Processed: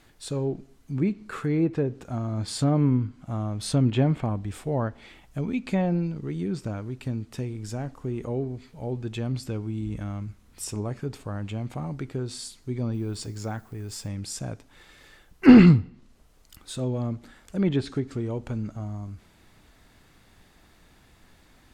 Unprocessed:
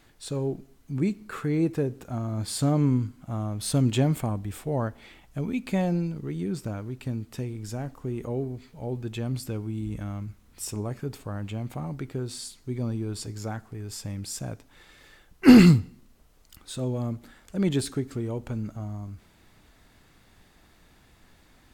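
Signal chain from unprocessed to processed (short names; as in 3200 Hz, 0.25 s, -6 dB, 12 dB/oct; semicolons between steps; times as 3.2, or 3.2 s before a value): treble ducked by the level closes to 2800 Hz, closed at -20.5 dBFS; 12.93–14.07 added noise violet -66 dBFS; gain +1 dB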